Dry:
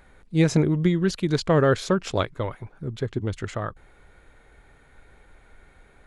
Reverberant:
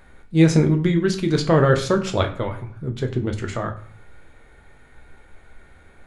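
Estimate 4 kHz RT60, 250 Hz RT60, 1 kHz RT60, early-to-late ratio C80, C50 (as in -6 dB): 0.35 s, 0.60 s, 0.45 s, 16.5 dB, 12.0 dB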